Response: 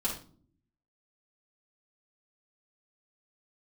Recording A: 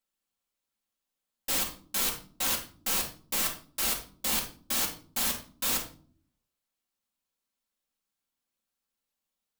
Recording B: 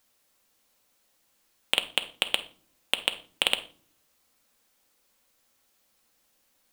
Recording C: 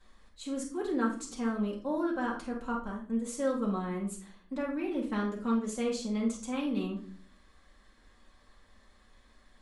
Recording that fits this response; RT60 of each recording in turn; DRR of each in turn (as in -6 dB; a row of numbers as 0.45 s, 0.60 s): C; no single decay rate, no single decay rate, no single decay rate; -1.5 dB, 8.0 dB, -6.5 dB